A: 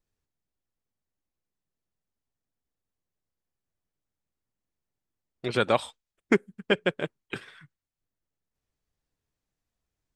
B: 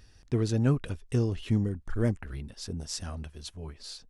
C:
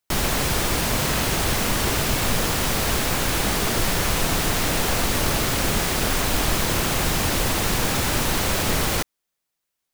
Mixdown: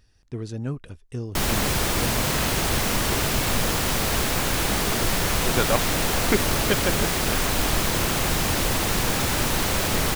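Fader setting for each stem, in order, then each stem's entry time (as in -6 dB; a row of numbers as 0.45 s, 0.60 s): -0.5 dB, -5.0 dB, -1.0 dB; 0.00 s, 0.00 s, 1.25 s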